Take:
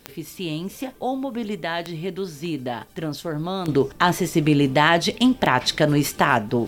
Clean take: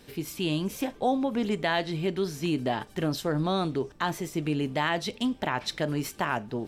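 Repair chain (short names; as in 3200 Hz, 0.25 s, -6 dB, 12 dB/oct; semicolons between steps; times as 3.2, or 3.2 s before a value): de-click; expander -34 dBFS, range -21 dB; gain 0 dB, from 3.68 s -10.5 dB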